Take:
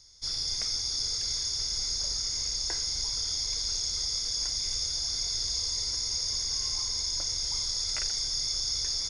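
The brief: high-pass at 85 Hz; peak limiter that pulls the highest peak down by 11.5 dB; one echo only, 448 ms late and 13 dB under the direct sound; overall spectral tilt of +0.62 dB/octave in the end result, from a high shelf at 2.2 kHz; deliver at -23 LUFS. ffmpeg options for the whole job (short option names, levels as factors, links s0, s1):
-af "highpass=85,highshelf=f=2200:g=-4,alimiter=level_in=2.66:limit=0.0631:level=0:latency=1,volume=0.376,aecho=1:1:448:0.224,volume=5.62"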